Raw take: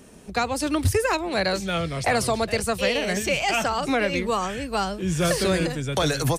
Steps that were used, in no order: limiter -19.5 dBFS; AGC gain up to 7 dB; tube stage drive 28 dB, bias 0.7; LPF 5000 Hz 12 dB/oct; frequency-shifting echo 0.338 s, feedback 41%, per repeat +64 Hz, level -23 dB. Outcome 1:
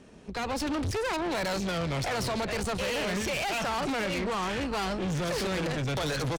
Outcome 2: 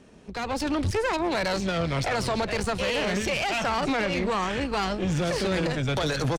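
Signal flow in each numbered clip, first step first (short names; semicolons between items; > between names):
LPF > limiter > frequency-shifting echo > AGC > tube stage; limiter > LPF > tube stage > frequency-shifting echo > AGC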